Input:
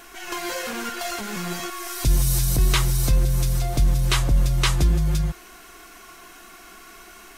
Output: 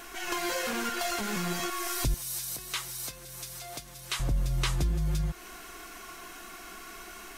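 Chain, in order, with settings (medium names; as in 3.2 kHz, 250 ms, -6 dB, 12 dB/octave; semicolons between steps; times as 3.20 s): compression 3:1, threshold -28 dBFS, peak gain reduction 10.5 dB; 2.14–4.20 s: high-pass 1.2 kHz 6 dB/octave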